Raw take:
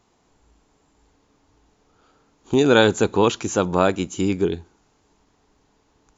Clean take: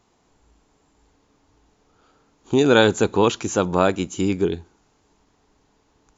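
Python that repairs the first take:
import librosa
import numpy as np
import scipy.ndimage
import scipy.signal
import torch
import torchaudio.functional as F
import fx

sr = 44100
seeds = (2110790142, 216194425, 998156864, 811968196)

y = fx.fix_interpolate(x, sr, at_s=(0.87, 2.54, 5.56), length_ms=1.7)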